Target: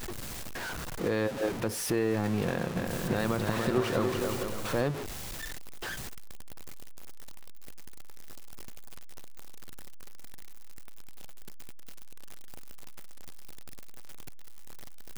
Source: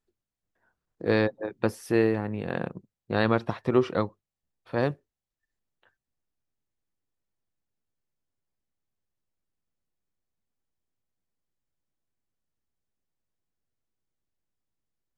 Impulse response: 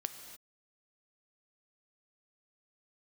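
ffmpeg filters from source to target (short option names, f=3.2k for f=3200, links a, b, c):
-filter_complex "[0:a]aeval=exprs='val(0)+0.5*0.0299*sgn(val(0))':c=same,alimiter=limit=-18.5dB:level=0:latency=1:release=139,asettb=1/sr,asplit=3[a][b][c];[a]atrim=end=2.474[d];[b]atrim=start=2.47:end=4.81,asetpts=PTS-STARTPTS,afade=t=in:d=0.004:c=qsin,afade=t=out:st=2.336:d=0.004:c=qsin,aecho=1:1:290|464|568.4|631|668.6:0.631|0.398|0.251|0.158|0.1,atrim=end_sample=103194[e];[c]atrim=start=4.806[f];[d][e]acrossfade=d=0.004:c1=hsin:c2=qsin[g];[g][f]acrossfade=d=0.004:c1=qsin:c2=hsin"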